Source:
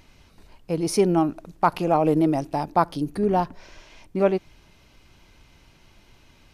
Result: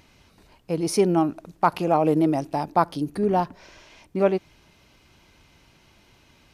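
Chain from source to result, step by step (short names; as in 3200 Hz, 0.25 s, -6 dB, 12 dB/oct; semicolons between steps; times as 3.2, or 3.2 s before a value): HPF 77 Hz 6 dB/oct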